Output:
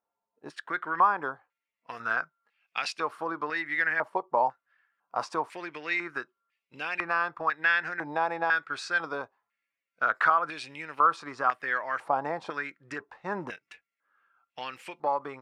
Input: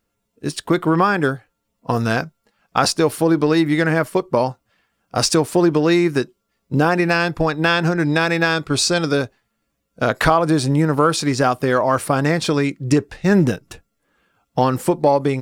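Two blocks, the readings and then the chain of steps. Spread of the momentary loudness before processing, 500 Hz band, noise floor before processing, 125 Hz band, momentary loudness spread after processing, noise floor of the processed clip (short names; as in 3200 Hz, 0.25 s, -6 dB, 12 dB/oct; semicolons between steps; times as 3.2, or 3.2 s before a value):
8 LU, -17.0 dB, -74 dBFS, -30.5 dB, 15 LU, under -85 dBFS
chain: stepped band-pass 2 Hz 860–2500 Hz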